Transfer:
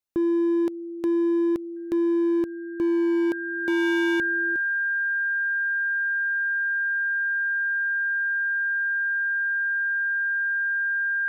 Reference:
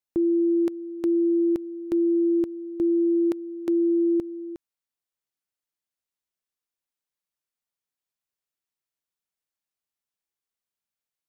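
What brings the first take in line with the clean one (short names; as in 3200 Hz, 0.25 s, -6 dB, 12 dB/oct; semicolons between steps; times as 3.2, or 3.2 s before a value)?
clip repair -19.5 dBFS; notch 1600 Hz, Q 30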